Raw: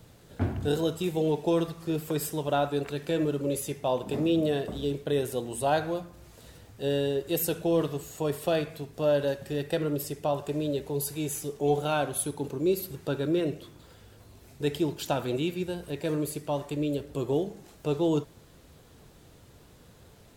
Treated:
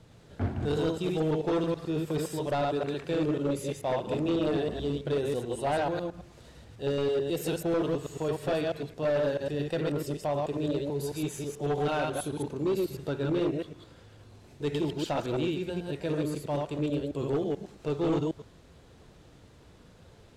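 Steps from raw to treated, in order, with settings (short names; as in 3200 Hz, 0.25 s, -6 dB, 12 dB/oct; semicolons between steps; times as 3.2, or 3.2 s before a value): reverse delay 0.109 s, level -2 dB; hard clip -21 dBFS, distortion -14 dB; air absorption 57 m; gain -2 dB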